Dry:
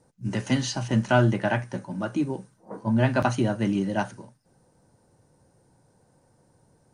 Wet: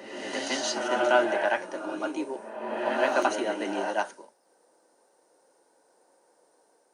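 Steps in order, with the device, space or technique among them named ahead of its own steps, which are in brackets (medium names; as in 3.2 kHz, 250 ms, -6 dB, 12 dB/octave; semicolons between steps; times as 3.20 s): ghost voice (reverse; reverberation RT60 1.6 s, pre-delay 91 ms, DRR 2 dB; reverse; high-pass 370 Hz 24 dB/octave)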